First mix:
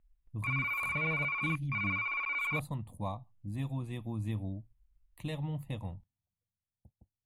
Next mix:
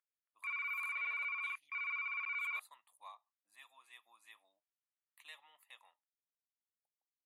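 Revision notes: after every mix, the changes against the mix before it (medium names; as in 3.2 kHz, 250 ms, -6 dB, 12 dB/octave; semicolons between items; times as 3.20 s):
master: add ladder high-pass 1.1 kHz, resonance 35%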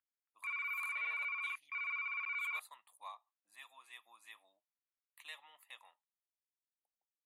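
speech +4.0 dB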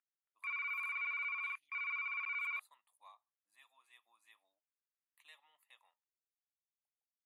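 speech -10.5 dB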